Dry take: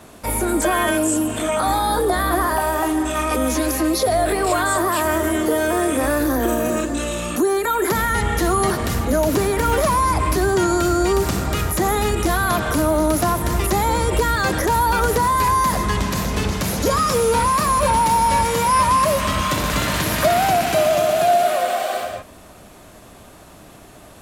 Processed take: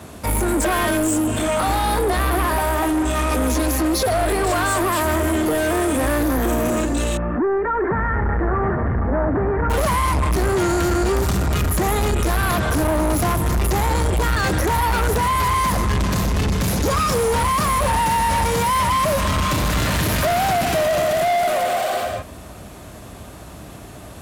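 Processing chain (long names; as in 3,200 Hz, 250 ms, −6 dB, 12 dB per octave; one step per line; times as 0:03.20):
high-pass filter 50 Hz 24 dB per octave
low-shelf EQ 130 Hz +10.5 dB
soft clipping −19.5 dBFS, distortion −9 dB
0:07.17–0:09.70: Chebyshev low-pass filter 1,800 Hz, order 4
level +3.5 dB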